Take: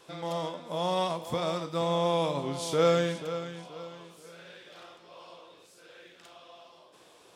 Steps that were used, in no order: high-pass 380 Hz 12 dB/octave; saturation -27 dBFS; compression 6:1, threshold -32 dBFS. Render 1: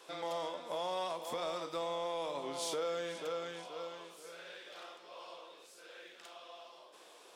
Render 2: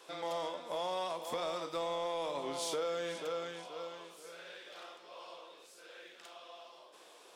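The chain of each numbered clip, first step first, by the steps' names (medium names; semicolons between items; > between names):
compression > high-pass > saturation; high-pass > compression > saturation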